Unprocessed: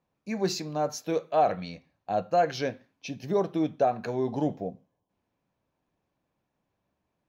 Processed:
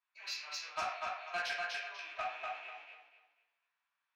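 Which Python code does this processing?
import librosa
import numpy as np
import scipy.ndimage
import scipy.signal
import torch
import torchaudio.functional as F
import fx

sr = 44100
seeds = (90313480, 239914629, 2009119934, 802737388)

y = fx.rattle_buzz(x, sr, strikes_db=-40.0, level_db=-31.0)
y = scipy.signal.sosfilt(scipy.signal.butter(4, 1200.0, 'highpass', fs=sr, output='sos'), y)
y = fx.level_steps(y, sr, step_db=19)
y = scipy.signal.sosfilt(scipy.signal.butter(2, 3700.0, 'lowpass', fs=sr, output='sos'), y)
y = fx.echo_feedback(y, sr, ms=431, feedback_pct=28, wet_db=-3.5)
y = fx.room_shoebox(y, sr, seeds[0], volume_m3=510.0, walls='mixed', distance_m=2.8)
y = 10.0 ** (-30.5 / 20.0) * np.tanh(y / 10.0 ** (-30.5 / 20.0))
y = fx.stretch_vocoder(y, sr, factor=0.57)
y = y * librosa.db_to_amplitude(1.5)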